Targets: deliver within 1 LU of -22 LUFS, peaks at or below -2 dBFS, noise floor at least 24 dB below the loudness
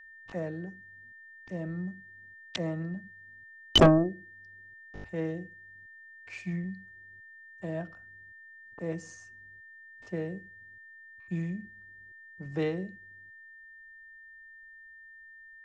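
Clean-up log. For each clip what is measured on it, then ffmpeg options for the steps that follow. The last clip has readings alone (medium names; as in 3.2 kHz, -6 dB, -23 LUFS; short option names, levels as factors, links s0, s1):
steady tone 1.8 kHz; tone level -49 dBFS; loudness -31.0 LUFS; peak level -12.0 dBFS; loudness target -22.0 LUFS
-> -af "bandreject=f=1800:w=30"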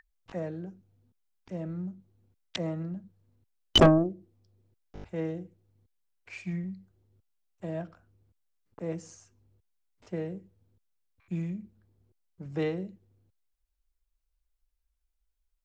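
steady tone not found; loudness -31.0 LUFS; peak level -11.5 dBFS; loudness target -22.0 LUFS
-> -af "volume=2.82"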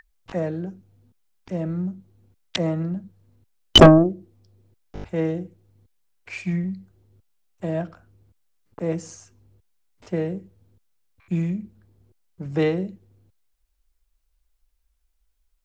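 loudness -22.0 LUFS; peak level -2.5 dBFS; noise floor -70 dBFS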